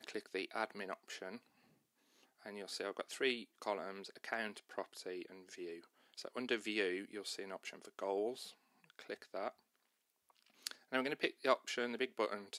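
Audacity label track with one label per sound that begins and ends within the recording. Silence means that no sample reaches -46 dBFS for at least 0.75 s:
2.460000	9.490000	sound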